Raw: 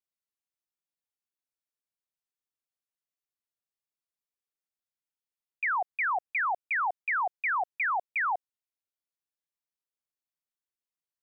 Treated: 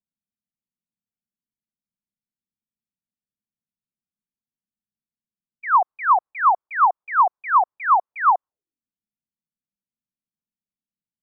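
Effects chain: envelope low-pass 210–1100 Hz up, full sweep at -32.5 dBFS; gain +4.5 dB

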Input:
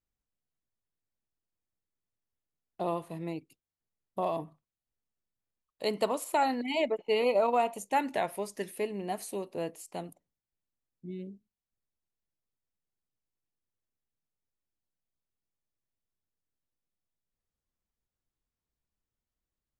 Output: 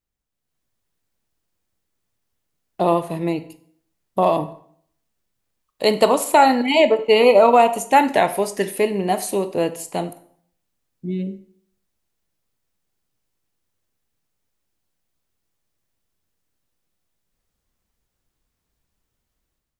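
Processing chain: AGC gain up to 10 dB; on a send: reverb RT60 0.60 s, pre-delay 13 ms, DRR 11 dB; on the sum: gain +4 dB

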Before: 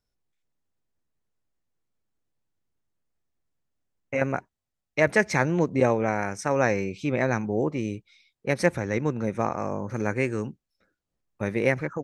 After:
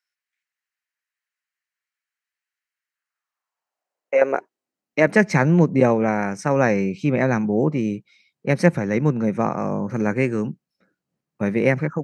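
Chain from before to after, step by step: high shelf 5400 Hz -6 dB; high-pass sweep 1800 Hz -> 160 Hz, 2.89–5.3; notch 3500 Hz, Q 9.6; gain +3.5 dB

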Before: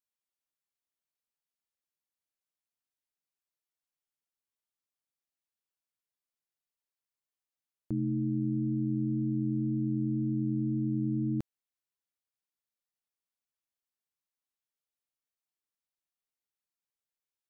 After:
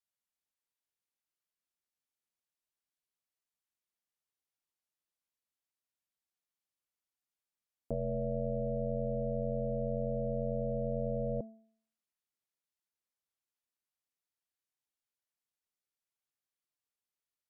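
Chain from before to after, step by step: treble ducked by the level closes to 300 Hz, closed at -29.5 dBFS; ring modulator 350 Hz; de-hum 221.8 Hz, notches 6; gain +1 dB

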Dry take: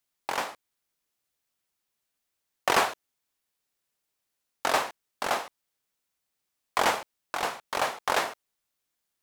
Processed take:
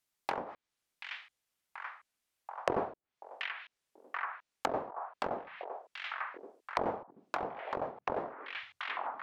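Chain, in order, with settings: delay with a stepping band-pass 0.733 s, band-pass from 2500 Hz, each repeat -0.7 oct, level -3.5 dB; treble ducked by the level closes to 540 Hz, closed at -26.5 dBFS; gain -2 dB

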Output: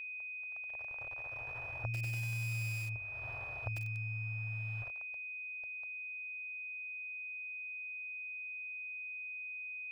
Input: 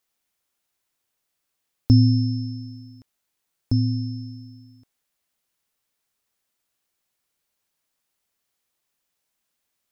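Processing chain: per-bin compression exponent 0.4; Doppler pass-by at 2.63, 9 m/s, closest 1.9 m; notches 50/100/150/200 Hz; notch comb 260 Hz; bit-crush 10-bit; high shelf 3900 Hz -8 dB; compressor 16:1, threshold -49 dBFS, peak gain reduction 27 dB; EQ curve 120 Hz 0 dB, 220 Hz -23 dB, 660 Hz +10 dB, 3000 Hz +1 dB, 5600 Hz -18 dB; AGC gain up to 7 dB; whine 2500 Hz -45 dBFS; lo-fi delay 96 ms, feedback 80%, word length 7-bit, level -7 dB; gain +4 dB

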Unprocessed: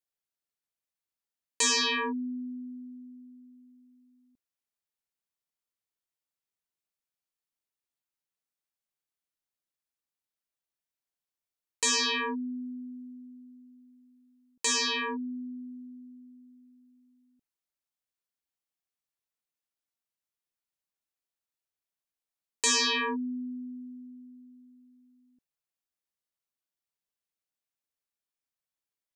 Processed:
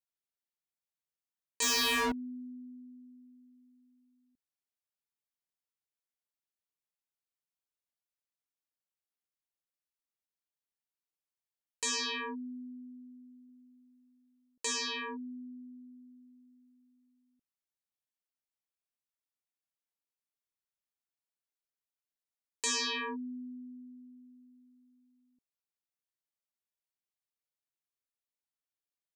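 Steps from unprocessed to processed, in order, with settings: 1.62–2.12 sample leveller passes 5; 13.49–14.73 bell 550 Hz +7 dB 0.68 oct; gain -7 dB

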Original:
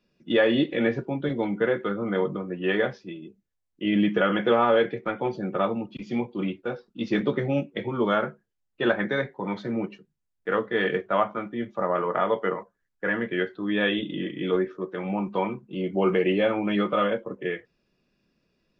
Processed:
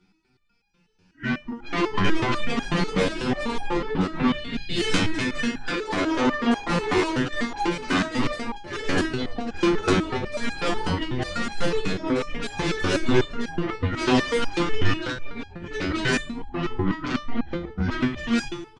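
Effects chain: whole clip reversed; comb 1.9 ms, depth 67%; in parallel at -11 dB: sine folder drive 16 dB, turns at -6.5 dBFS; on the sum: frequency shift -210 Hz; on a send: analogue delay 0.113 s, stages 1024, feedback 48%, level -15 dB; on the sum: plate-style reverb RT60 0.68 s, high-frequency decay 0.9×, pre-delay 0.105 s, DRR 19.5 dB; echoes that change speed 0.671 s, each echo +3 st, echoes 3; downsampling 22050 Hz; stepped resonator 8.1 Hz 93–810 Hz; gain +5 dB

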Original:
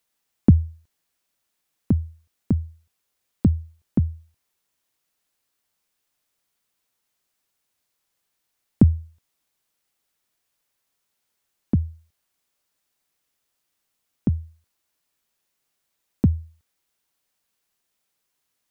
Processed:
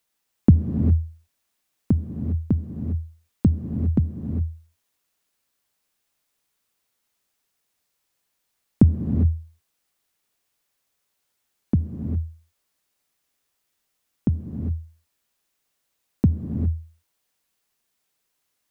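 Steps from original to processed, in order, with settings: non-linear reverb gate 0.43 s rising, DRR 4.5 dB

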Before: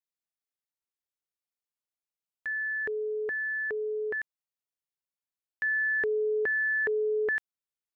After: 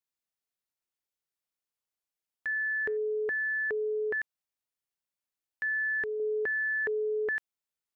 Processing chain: 2.47–2.97 de-hum 160.7 Hz, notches 16; 5.76–6.2 dynamic EQ 490 Hz, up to -7 dB, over -44 dBFS, Q 1; limiter -28 dBFS, peak gain reduction 3.5 dB; gain +1 dB

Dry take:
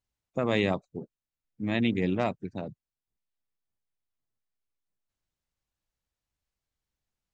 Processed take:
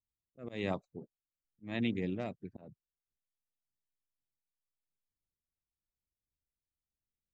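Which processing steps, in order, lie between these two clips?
low-pass opened by the level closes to 430 Hz, open at -25.5 dBFS; rotary speaker horn 1 Hz; auto swell 0.219 s; gain -6 dB

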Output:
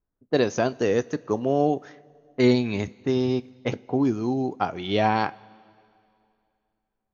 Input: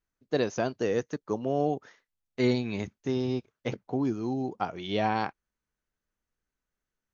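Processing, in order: low-pass opened by the level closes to 820 Hz, open at -28 dBFS; two-slope reverb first 0.23 s, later 2.5 s, from -18 dB, DRR 15 dB; gain +5.5 dB

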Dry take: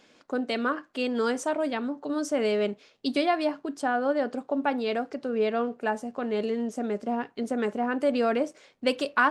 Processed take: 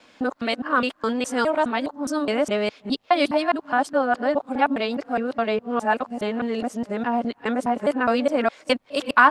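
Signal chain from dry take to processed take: local time reversal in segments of 0.207 s; fifteen-band EQ 160 Hz -5 dB, 400 Hz -7 dB, 1000 Hz +3 dB, 6300 Hz -4 dB; gain +6.5 dB

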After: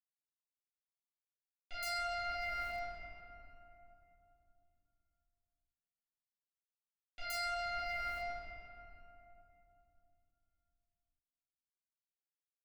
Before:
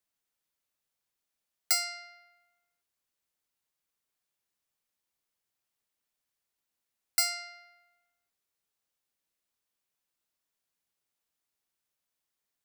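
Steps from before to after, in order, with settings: G.711 law mismatch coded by A; in parallel at +2.5 dB: upward compressor, threshold -32 dBFS; on the sum: wavefolder -20 dBFS; reverb RT60 3.0 s, pre-delay 4 ms, DRR -13 dB; reverse; compressor 12:1, threshold -36 dBFS, peak gain reduction 20.5 dB; reverse; bands offset in time lows, highs 0.12 s, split 3700 Hz

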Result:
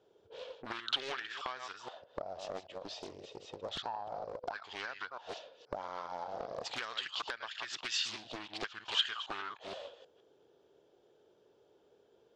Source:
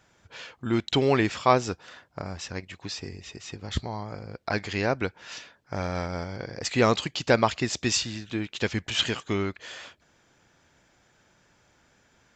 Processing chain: reverse delay 0.157 s, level -9 dB; auto-wah 410–1700 Hz, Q 5.6, up, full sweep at -22 dBFS; bell 230 Hz -6.5 dB 1.2 oct; compressor 16:1, threshold -46 dBFS, peak gain reduction 20.5 dB; soft clip -35 dBFS, distortion -24 dB; resonant high shelf 2600 Hz +7 dB, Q 3; Doppler distortion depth 0.96 ms; gain +11.5 dB

